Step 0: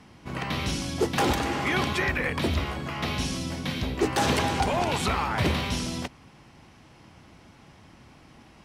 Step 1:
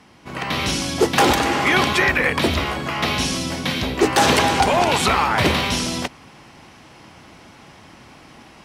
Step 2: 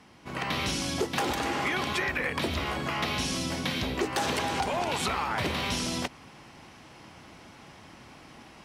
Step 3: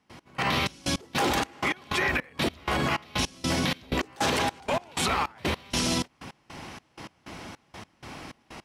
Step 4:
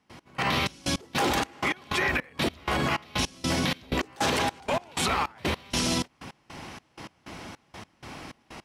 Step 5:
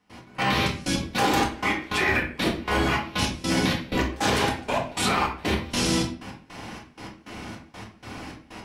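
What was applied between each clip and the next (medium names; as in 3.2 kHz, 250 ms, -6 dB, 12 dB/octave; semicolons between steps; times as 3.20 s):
level rider gain up to 6 dB; bass shelf 200 Hz -9 dB; trim +4 dB
compression 6:1, threshold -21 dBFS, peak gain reduction 9.5 dB; trim -5 dB
peak limiter -25 dBFS, peak gain reduction 9 dB; trance gate ".x..xxx." 157 bpm -24 dB; trim +8.5 dB
no audible change
reverberation RT60 0.45 s, pre-delay 4 ms, DRR -2 dB; trim -1 dB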